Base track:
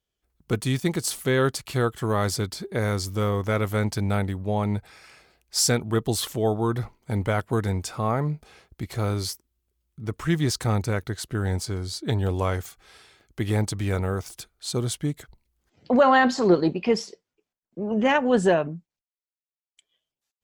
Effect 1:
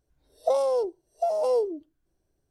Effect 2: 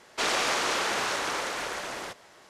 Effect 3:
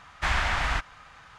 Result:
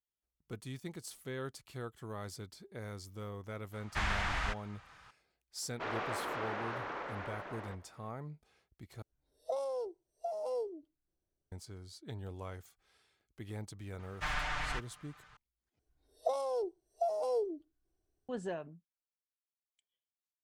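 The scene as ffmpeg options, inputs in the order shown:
-filter_complex "[3:a]asplit=2[s0][s1];[1:a]asplit=2[s2][s3];[0:a]volume=0.106[s4];[s0]acontrast=79[s5];[2:a]lowpass=1700[s6];[s1]aecho=1:1:6.7:0.82[s7];[s3]aecho=1:1:2.7:0.39[s8];[s4]asplit=3[s9][s10][s11];[s9]atrim=end=9.024[s12];[s2]atrim=end=2.5,asetpts=PTS-STARTPTS,volume=0.224[s13];[s10]atrim=start=11.516:end=15.794[s14];[s8]atrim=end=2.5,asetpts=PTS-STARTPTS,volume=0.355[s15];[s11]atrim=start=18.286[s16];[s5]atrim=end=1.38,asetpts=PTS-STARTPTS,volume=0.178,afade=t=in:d=0.004:c=hsin,afade=t=out:st=1.376:d=0.004:c=hsin,adelay=164493S[s17];[s6]atrim=end=2.49,asetpts=PTS-STARTPTS,volume=0.376,afade=t=in:d=0.004:c=hsin,afade=t=out:st=2.486:d=0.004:c=hsin,adelay=5620[s18];[s7]atrim=end=1.38,asetpts=PTS-STARTPTS,volume=0.251,afade=t=in:d=0.004:c=hsin,afade=t=out:st=1.376:d=0.004:c=hsin,adelay=13990[s19];[s12][s13]acrossfade=d=0.004:c1=hsin:c2=hsin[s20];[s20][s14]acrossfade=d=0.004:c1=hsin:c2=hsin[s21];[s21][s15]acrossfade=d=0.004:c1=hsin:c2=hsin[s22];[s22][s16]acrossfade=d=0.004:c1=hsin:c2=hsin[s23];[s23][s17][s18][s19]amix=inputs=4:normalize=0"

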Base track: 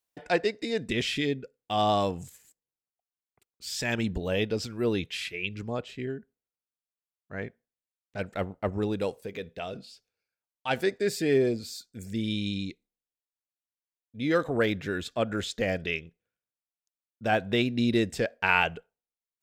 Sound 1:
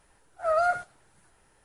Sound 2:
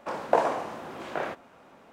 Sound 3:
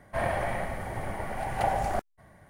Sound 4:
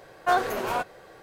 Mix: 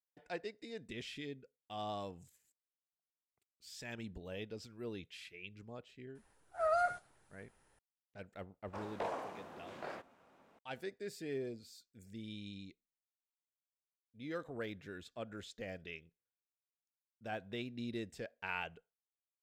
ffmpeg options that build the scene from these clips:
-filter_complex "[0:a]volume=0.141[s0];[2:a]asoftclip=type=tanh:threshold=0.1[s1];[1:a]atrim=end=1.64,asetpts=PTS-STARTPTS,volume=0.398,afade=t=in:d=0.004:c=hsin,afade=t=out:st=1.636:d=0.004:c=hsin,adelay=6150[s2];[s1]atrim=end=1.92,asetpts=PTS-STARTPTS,volume=0.237,afade=t=in:d=0.004:c=hsin,afade=t=out:st=1.916:d=0.004:c=hsin,adelay=8670[s3];[s0][s2][s3]amix=inputs=3:normalize=0"

